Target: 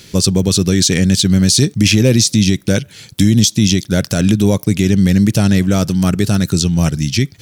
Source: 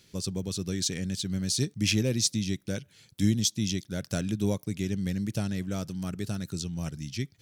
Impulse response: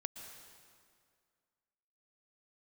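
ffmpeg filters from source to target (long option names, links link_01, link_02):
-af "alimiter=level_in=21dB:limit=-1dB:release=50:level=0:latency=1,volume=-1dB"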